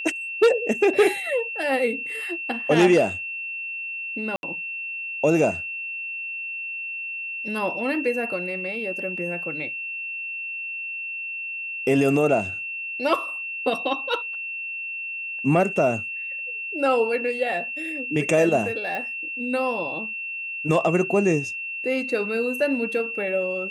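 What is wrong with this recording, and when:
tone 2700 Hz -29 dBFS
4.36–4.43 gap 71 ms
18.95 pop -19 dBFS

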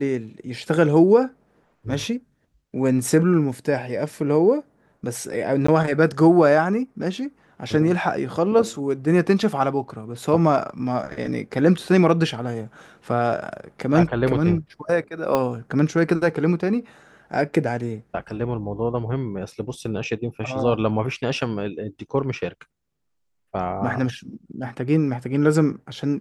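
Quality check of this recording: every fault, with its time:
5.67–5.68 gap 14 ms
15.35 pop -8 dBFS

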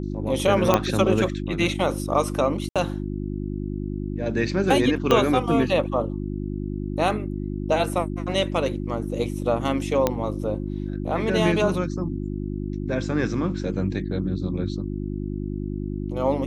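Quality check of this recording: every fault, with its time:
hum 50 Hz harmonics 7 -29 dBFS
0.74 pop -4 dBFS
2.69–2.76 gap 66 ms
5.11 pop -6 dBFS
10.07 pop -7 dBFS

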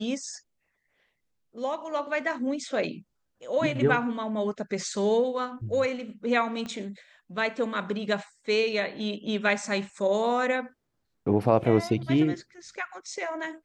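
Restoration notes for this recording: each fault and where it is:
6.66 pop -23 dBFS

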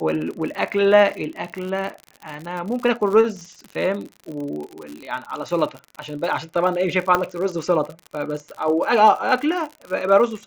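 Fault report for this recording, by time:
crackle 66/s -28 dBFS
7.15 pop -6 dBFS

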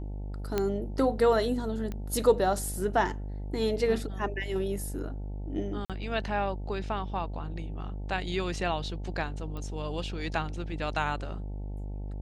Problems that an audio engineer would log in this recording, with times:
buzz 50 Hz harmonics 18 -36 dBFS
0.58 pop -14 dBFS
1.92 pop -23 dBFS
5.85–5.9 gap 47 ms
9.57 pop -27 dBFS

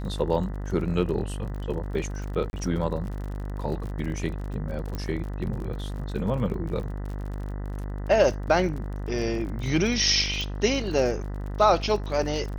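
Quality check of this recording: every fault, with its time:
buzz 50 Hz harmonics 40 -32 dBFS
crackle 45/s -35 dBFS
2.5–2.53 gap 31 ms
4.95 pop -19 dBFS
10.41 pop

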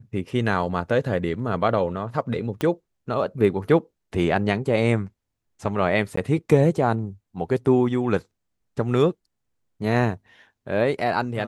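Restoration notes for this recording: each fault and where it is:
2.61 pop -13 dBFS
6.16–6.17 gap 14 ms

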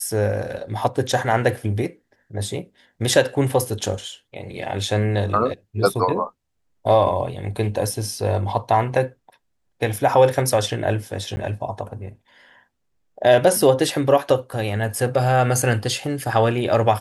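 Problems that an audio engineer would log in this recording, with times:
11.36–11.37 gap 10 ms

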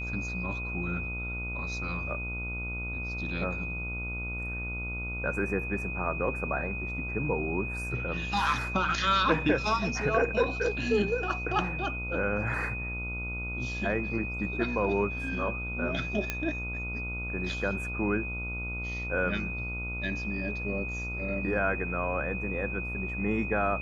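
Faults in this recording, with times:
buzz 60 Hz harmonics 24 -37 dBFS
tone 2500 Hz -35 dBFS
16.3 pop -14 dBFS

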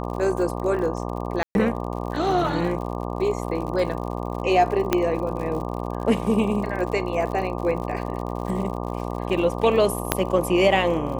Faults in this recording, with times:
buzz 60 Hz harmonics 20 -29 dBFS
crackle 70/s -32 dBFS
1.43–1.55 gap 0.121 s
4.93 pop -5 dBFS
10.12 pop -2 dBFS

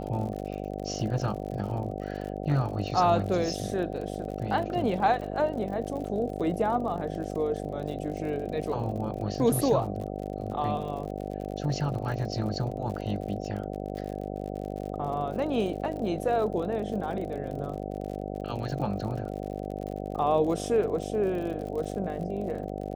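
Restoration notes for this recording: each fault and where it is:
buzz 50 Hz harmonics 15 -35 dBFS
crackle 60/s -37 dBFS

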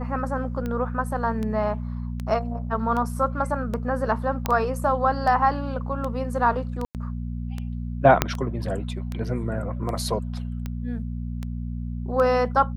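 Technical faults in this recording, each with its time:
hum 60 Hz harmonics 4 -30 dBFS
tick 78 rpm -18 dBFS
4.46 pop -9 dBFS
6.85–6.95 gap 98 ms
8.22 pop -3 dBFS

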